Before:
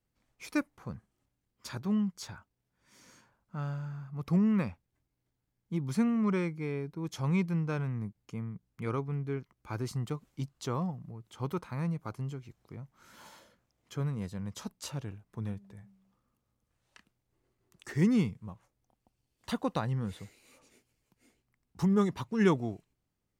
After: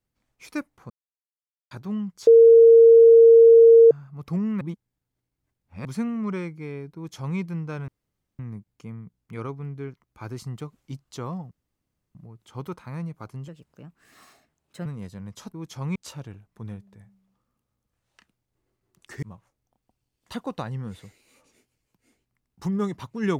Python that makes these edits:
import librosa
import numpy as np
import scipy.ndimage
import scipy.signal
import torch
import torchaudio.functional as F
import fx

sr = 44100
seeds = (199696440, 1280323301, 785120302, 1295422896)

y = fx.edit(x, sr, fx.silence(start_s=0.9, length_s=0.81),
    fx.bleep(start_s=2.27, length_s=1.64, hz=459.0, db=-8.0),
    fx.reverse_span(start_s=4.61, length_s=1.24),
    fx.duplicate(start_s=6.96, length_s=0.42, to_s=14.73),
    fx.insert_room_tone(at_s=7.88, length_s=0.51),
    fx.insert_room_tone(at_s=11.0, length_s=0.64),
    fx.speed_span(start_s=12.33, length_s=1.72, speed=1.25),
    fx.cut(start_s=18.0, length_s=0.4), tone=tone)